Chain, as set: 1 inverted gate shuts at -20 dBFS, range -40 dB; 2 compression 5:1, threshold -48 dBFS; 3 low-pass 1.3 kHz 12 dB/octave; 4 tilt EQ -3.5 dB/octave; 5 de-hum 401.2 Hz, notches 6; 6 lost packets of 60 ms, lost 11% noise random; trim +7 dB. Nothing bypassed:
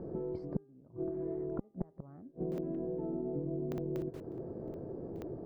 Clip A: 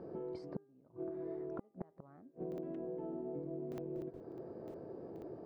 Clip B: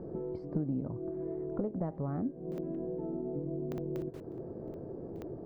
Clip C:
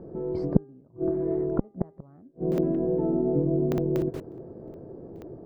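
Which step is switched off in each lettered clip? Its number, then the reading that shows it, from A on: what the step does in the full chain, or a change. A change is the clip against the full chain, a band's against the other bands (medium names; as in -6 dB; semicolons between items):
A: 4, 125 Hz band -5.0 dB; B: 1, 500 Hz band -2.5 dB; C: 2, mean gain reduction 7.5 dB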